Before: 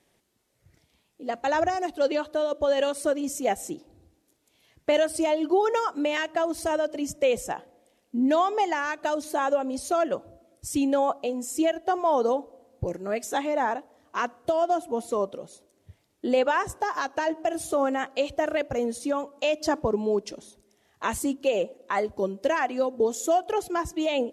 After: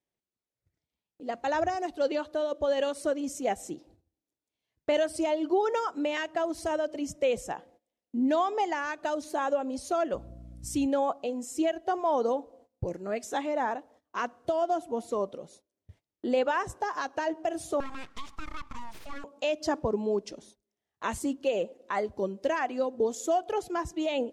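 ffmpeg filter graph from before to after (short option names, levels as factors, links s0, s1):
-filter_complex "[0:a]asettb=1/sr,asplit=3[s0][s1][s2];[s0]atrim=end=10.144[s3];[s1]atrim=start=10.14:end=10.87,asetpts=PTS-STARTPTS,afade=t=in:d=0.004:c=qsin,afade=t=out:st=0.726:d=0.004:c=qsin,highshelf=f=7800:g=5.5,aeval=exprs='val(0)+0.00794*(sin(2*PI*60*n/s)+sin(2*PI*2*60*n/s)/2+sin(2*PI*3*60*n/s)/3+sin(2*PI*4*60*n/s)/4+sin(2*PI*5*60*n/s)/5)':c=same[s4];[s2]atrim=start=10.866[s5];[s3][s4]acrossfade=d=0.004:c1=hsin:c2=qsin[s6];[s6][s5]acrossfade=d=0.004:c1=qsin:c2=hsin,asettb=1/sr,asplit=3[s7][s8][s9];[s7]atrim=end=17.804[s10];[s8]atrim=start=17.8:end=19.24,asetpts=PTS-STARTPTS,afade=t=in:d=0.004:c=qsin,afade=t=out:st=1.436:d=0.004:c=qsin,highpass=f=360:w=0.5412,highpass=f=360:w=1.3066,acompressor=threshold=0.0224:ratio=2:attack=3.2:release=140:knee=1:detection=peak,aeval=exprs='abs(val(0))':c=same[s11];[s9]atrim=start=19.236[s12];[s10][s11]acrossfade=d=0.004:c1=hsin:c2=qsin[s13];[s13][s12]acrossfade=d=0.004:c1=qsin:c2=hsin,aemphasis=mode=reproduction:type=50fm,agate=range=0.112:threshold=0.00224:ratio=16:detection=peak,bass=f=250:g=1,treble=f=4000:g=7,volume=0.631"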